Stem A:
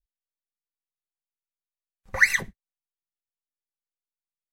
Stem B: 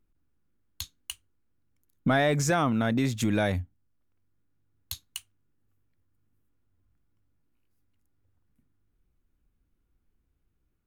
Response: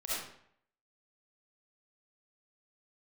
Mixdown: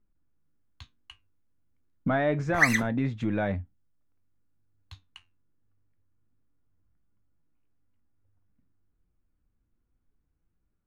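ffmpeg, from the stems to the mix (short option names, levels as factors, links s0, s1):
-filter_complex "[0:a]adelay=400,volume=1.12[s0];[1:a]lowpass=2000,bandreject=f=380:w=12,volume=1.33[s1];[s0][s1]amix=inputs=2:normalize=0,flanger=delay=4.8:depth=7.2:regen=72:speed=0.28:shape=triangular"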